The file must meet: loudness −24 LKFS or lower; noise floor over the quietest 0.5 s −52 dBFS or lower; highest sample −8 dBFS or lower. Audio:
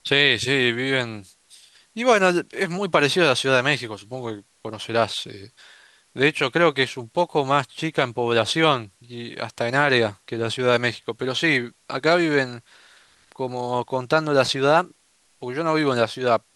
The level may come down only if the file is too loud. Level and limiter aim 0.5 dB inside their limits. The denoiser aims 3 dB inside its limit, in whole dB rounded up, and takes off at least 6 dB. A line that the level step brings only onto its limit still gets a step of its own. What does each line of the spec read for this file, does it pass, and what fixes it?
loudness −21.5 LKFS: out of spec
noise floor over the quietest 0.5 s −61 dBFS: in spec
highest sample −4.0 dBFS: out of spec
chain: level −3 dB
brickwall limiter −8.5 dBFS

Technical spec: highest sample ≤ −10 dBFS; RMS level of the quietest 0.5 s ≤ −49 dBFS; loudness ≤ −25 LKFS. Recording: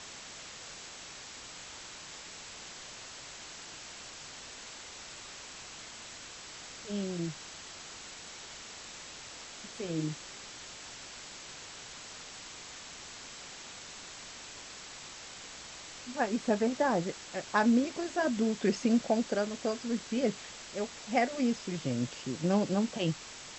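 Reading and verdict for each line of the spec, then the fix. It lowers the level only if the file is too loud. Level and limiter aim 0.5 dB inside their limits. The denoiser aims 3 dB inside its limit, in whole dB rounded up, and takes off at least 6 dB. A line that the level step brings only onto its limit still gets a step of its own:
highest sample −13.0 dBFS: in spec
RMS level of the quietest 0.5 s −47 dBFS: out of spec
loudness −35.5 LKFS: in spec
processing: broadband denoise 6 dB, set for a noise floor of −47 dBFS

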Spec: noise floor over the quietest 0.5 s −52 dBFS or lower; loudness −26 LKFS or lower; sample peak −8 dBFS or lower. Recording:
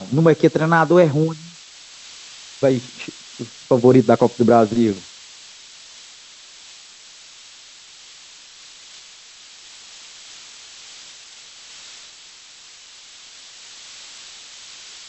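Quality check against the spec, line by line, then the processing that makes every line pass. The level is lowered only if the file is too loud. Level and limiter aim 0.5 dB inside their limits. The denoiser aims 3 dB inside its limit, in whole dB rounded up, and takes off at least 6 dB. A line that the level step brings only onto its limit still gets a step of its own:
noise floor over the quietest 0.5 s −44 dBFS: out of spec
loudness −16.5 LKFS: out of spec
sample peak −1.5 dBFS: out of spec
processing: level −10 dB

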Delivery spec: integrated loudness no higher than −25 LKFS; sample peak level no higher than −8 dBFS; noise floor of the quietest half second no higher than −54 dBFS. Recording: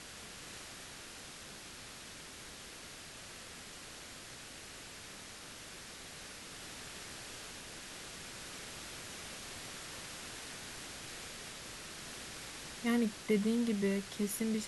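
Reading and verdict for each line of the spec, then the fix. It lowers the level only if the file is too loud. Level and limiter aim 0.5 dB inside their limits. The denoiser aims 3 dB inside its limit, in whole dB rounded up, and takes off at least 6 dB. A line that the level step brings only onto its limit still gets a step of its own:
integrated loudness −41.5 LKFS: in spec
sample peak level −19.5 dBFS: in spec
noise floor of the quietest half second −50 dBFS: out of spec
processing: broadband denoise 7 dB, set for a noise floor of −50 dBFS

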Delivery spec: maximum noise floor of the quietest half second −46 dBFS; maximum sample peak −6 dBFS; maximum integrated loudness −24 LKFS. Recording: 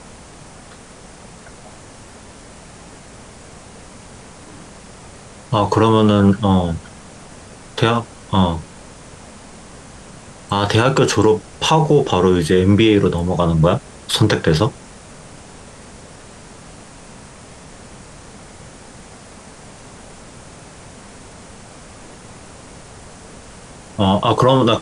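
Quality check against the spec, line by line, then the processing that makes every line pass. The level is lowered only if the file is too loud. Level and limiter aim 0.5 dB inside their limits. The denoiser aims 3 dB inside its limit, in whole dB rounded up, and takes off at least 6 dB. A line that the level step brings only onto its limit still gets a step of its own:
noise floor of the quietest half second −40 dBFS: out of spec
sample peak −3.5 dBFS: out of spec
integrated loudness −16.0 LKFS: out of spec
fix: level −8.5 dB

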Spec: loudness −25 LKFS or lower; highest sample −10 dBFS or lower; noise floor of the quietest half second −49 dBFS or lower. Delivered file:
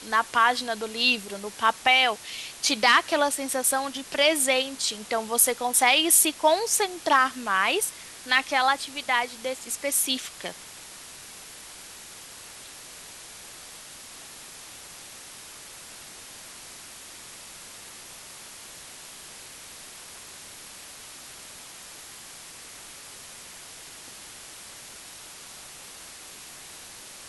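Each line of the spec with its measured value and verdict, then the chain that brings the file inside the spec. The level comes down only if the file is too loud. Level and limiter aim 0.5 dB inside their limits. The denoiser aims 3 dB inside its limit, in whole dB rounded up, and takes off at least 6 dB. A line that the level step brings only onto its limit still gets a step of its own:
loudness −23.0 LKFS: out of spec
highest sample −5.5 dBFS: out of spec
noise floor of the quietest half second −44 dBFS: out of spec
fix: broadband denoise 6 dB, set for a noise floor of −44 dBFS
level −2.5 dB
brickwall limiter −10.5 dBFS

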